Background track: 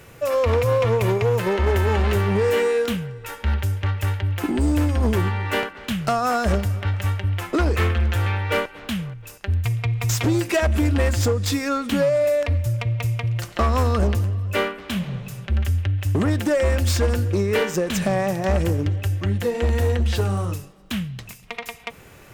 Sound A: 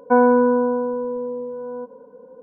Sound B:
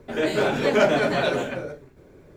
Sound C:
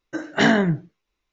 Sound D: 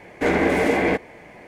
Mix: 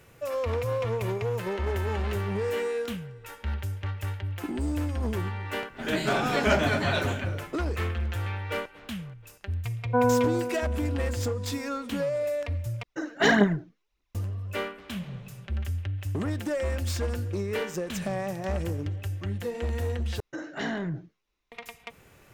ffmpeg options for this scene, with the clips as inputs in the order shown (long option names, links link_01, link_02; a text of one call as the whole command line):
ffmpeg -i bed.wav -i cue0.wav -i cue1.wav -i cue2.wav -filter_complex "[3:a]asplit=2[link_01][link_02];[0:a]volume=-9.5dB[link_03];[2:a]equalizer=frequency=480:width_type=o:width=0.94:gain=-8[link_04];[1:a]aecho=1:1:332:0.316[link_05];[link_01]aphaser=in_gain=1:out_gain=1:delay=4.5:decay=0.59:speed=1.7:type=triangular[link_06];[link_02]acompressor=threshold=-28dB:ratio=3:attack=0.13:release=28:knee=6:detection=peak[link_07];[link_03]asplit=3[link_08][link_09][link_10];[link_08]atrim=end=12.834[link_11];[link_06]atrim=end=1.32,asetpts=PTS-STARTPTS,volume=-5dB[link_12];[link_09]atrim=start=14.146:end=20.204[link_13];[link_07]atrim=end=1.32,asetpts=PTS-STARTPTS,volume=-2.5dB[link_14];[link_10]atrim=start=21.516[link_15];[link_04]atrim=end=2.36,asetpts=PTS-STARTPTS,volume=-1.5dB,afade=type=in:duration=0.004:curve=hsin,afade=type=out:start_time=2.356:duration=0.004:curve=hsin,adelay=5700[link_16];[link_05]atrim=end=2.42,asetpts=PTS-STARTPTS,volume=-8dB,afade=type=in:duration=0.004:curve=hsin,afade=type=out:start_time=2.416:duration=0.004:curve=hsin,adelay=9830[link_17];[link_11][link_12]acrossfade=duration=0.004:curve1=hsin:curve2=hsin[link_18];[link_18][link_13]acrossfade=duration=0.004:curve1=hsin:curve2=hsin[link_19];[link_19][link_14]acrossfade=duration=0.004:curve1=hsin:curve2=hsin[link_20];[link_20][link_15]acrossfade=duration=0.004:curve1=hsin:curve2=hsin[link_21];[link_21][link_16][link_17]amix=inputs=3:normalize=0" out.wav